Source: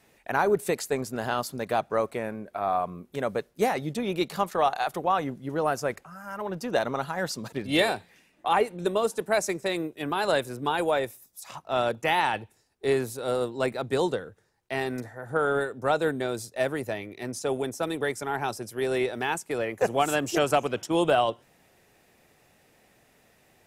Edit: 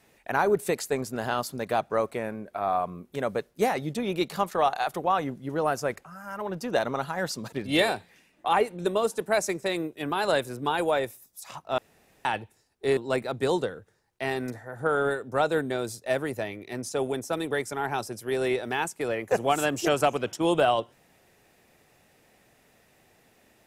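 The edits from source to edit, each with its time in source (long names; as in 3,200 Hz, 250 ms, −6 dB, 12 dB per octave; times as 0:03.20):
0:11.78–0:12.25: fill with room tone
0:12.97–0:13.47: remove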